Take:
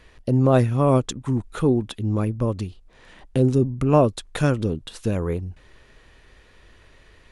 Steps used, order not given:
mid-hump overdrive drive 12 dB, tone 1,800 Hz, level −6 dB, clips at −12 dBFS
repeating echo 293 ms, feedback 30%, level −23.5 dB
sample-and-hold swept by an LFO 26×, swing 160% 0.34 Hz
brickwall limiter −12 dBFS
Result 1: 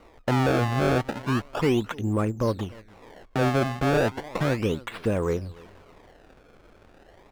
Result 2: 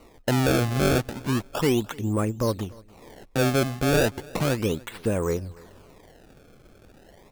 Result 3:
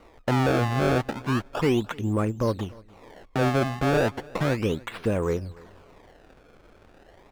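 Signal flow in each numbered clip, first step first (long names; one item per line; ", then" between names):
brickwall limiter, then repeating echo, then sample-and-hold swept by an LFO, then mid-hump overdrive
brickwall limiter, then mid-hump overdrive, then sample-and-hold swept by an LFO, then repeating echo
brickwall limiter, then sample-and-hold swept by an LFO, then mid-hump overdrive, then repeating echo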